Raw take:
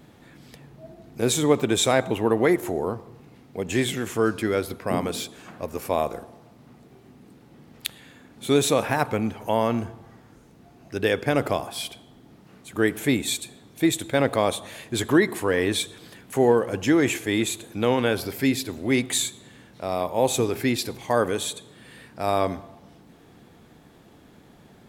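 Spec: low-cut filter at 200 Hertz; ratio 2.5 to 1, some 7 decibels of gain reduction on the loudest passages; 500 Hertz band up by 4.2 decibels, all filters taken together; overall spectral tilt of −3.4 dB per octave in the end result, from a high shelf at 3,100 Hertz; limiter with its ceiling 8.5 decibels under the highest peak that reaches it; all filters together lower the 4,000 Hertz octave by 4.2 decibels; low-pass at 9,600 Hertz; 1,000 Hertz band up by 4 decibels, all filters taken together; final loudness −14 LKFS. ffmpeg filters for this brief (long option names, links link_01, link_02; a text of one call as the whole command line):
ffmpeg -i in.wav -af "highpass=200,lowpass=9600,equalizer=frequency=500:width_type=o:gain=4.5,equalizer=frequency=1000:width_type=o:gain=3.5,highshelf=frequency=3100:gain=3.5,equalizer=frequency=4000:width_type=o:gain=-7.5,acompressor=threshold=-21dB:ratio=2.5,volume=14dB,alimiter=limit=-1.5dB:level=0:latency=1" out.wav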